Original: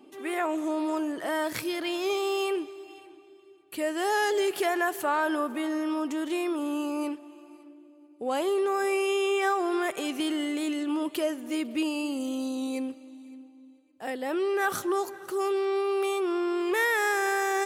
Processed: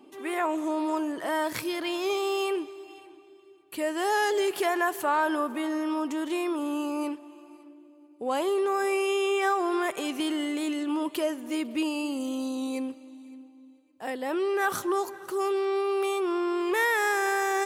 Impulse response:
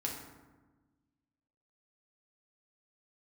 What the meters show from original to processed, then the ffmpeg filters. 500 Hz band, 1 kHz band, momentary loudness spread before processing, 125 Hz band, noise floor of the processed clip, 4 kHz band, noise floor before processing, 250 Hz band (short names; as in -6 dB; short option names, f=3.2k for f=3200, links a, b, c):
0.0 dB, +1.5 dB, 8 LU, n/a, -54 dBFS, 0.0 dB, -54 dBFS, 0.0 dB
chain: -af "equalizer=f=1k:w=5.6:g=5.5"